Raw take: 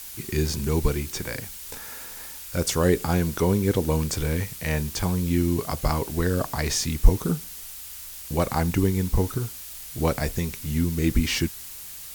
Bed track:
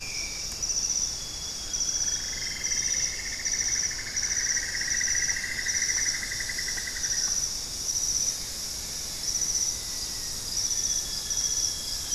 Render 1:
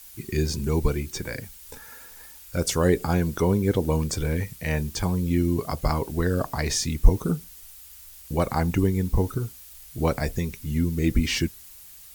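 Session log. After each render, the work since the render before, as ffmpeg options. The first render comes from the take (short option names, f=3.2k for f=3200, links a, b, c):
-af "afftdn=nr=9:nf=-39"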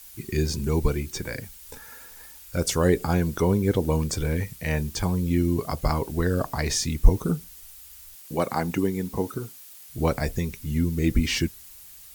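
-filter_complex "[0:a]asettb=1/sr,asplit=3[a][b][c];[a]atrim=end=8.154[d];[b]atrim=start=8.15:end=9.9,asetpts=PTS-STARTPTS,afade=t=in:d=0.004:c=qsin,afade=t=out:st=1.746:d=0.004:c=qsin,highpass=180[e];[c]atrim=start=9.896[f];[d][e]acrossfade=d=0.004:c1=hsin:c2=qsin[g];[g][f]acrossfade=d=0.004:c1=qsin:c2=hsin"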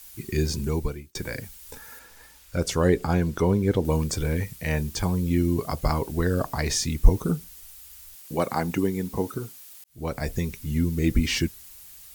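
-filter_complex "[0:a]asettb=1/sr,asplit=3[a][b][c];[a]atrim=end=1.994[d];[b]atrim=start=1.99:end=3.85,asetpts=PTS-STARTPTS,afade=t=in:d=0.004:c=qsin,afade=t=out:st=1.856:d=0.004:c=qsin,highshelf=f=7.6k:g=-9.5[e];[c]atrim=start=3.846[f];[d][e]acrossfade=d=0.004:c1=hsin:c2=qsin[g];[g][f]acrossfade=d=0.004:c1=qsin:c2=hsin,asplit=3[h][i][j];[h]atrim=end=1.15,asetpts=PTS-STARTPTS,afade=t=out:st=0.6:d=0.55[k];[i]atrim=start=1.15:end=9.84,asetpts=PTS-STARTPTS,afade=t=in:d=0.004:c=hsin,afade=t=out:st=8.686:d=0.004:c=hsin[l];[j]atrim=start=9.84,asetpts=PTS-STARTPTS,afade=t=in:d=0.53[m];[k][l][m]concat=n=3:v=0:a=1"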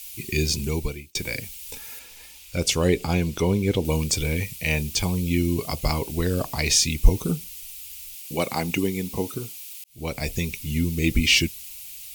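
-af "highshelf=f=2k:t=q:w=3:g=6.5"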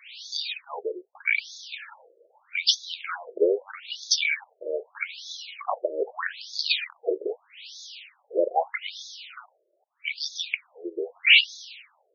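-filter_complex "[0:a]asplit=2[a][b];[b]highpass=f=720:p=1,volume=16dB,asoftclip=type=tanh:threshold=-3dB[c];[a][c]amix=inputs=2:normalize=0,lowpass=f=4.4k:p=1,volume=-6dB,afftfilt=real='re*between(b*sr/1024,440*pow(4800/440,0.5+0.5*sin(2*PI*0.8*pts/sr))/1.41,440*pow(4800/440,0.5+0.5*sin(2*PI*0.8*pts/sr))*1.41)':imag='im*between(b*sr/1024,440*pow(4800/440,0.5+0.5*sin(2*PI*0.8*pts/sr))/1.41,440*pow(4800/440,0.5+0.5*sin(2*PI*0.8*pts/sr))*1.41)':win_size=1024:overlap=0.75"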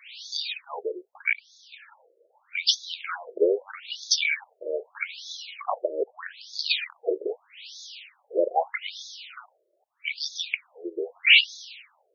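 -filter_complex "[0:a]asplit=3[a][b][c];[a]atrim=end=1.33,asetpts=PTS-STARTPTS,afade=t=out:st=1.326:d=0.004:c=hsin:silence=0.1[d];[b]atrim=start=1.33:end=6.04,asetpts=PTS-STARTPTS,afade=t=in:d=1.5:silence=0.1,afade=t=out:st=4.706:d=0.004:c=hsin:silence=0.16788[e];[c]atrim=start=6.04,asetpts=PTS-STARTPTS,afade=t=in:d=0.74:silence=0.16788[f];[d][e][f]concat=n=3:v=0:a=1"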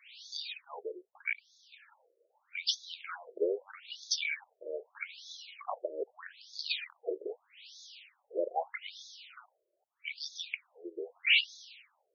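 -af "volume=-9.5dB"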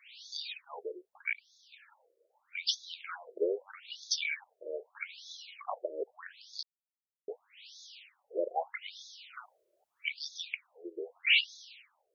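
-filter_complex "[0:a]asplit=3[a][b][c];[a]afade=t=out:st=9.33:d=0.02[d];[b]acontrast=53,afade=t=in:st=9.33:d=0.02,afade=t=out:st=10.08:d=0.02[e];[c]afade=t=in:st=10.08:d=0.02[f];[d][e][f]amix=inputs=3:normalize=0,asplit=3[g][h][i];[g]atrim=end=6.63,asetpts=PTS-STARTPTS,afade=t=out:st=6.626:d=0.004:c=hsin[j];[h]atrim=start=6.63:end=7.28,asetpts=PTS-STARTPTS,volume=0[k];[i]atrim=start=7.28,asetpts=PTS-STARTPTS,afade=t=in:d=0.004:c=hsin[l];[j][k][l]concat=n=3:v=0:a=1"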